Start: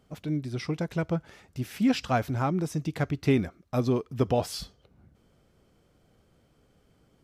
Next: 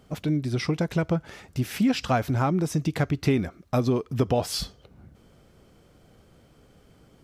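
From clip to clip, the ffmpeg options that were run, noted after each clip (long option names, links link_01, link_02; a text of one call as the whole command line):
ffmpeg -i in.wav -af "acompressor=threshold=-30dB:ratio=2.5,volume=8dB" out.wav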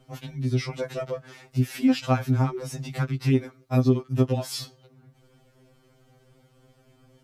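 ffmpeg -i in.wav -af "afftfilt=real='re*2.45*eq(mod(b,6),0)':imag='im*2.45*eq(mod(b,6),0)':win_size=2048:overlap=0.75" out.wav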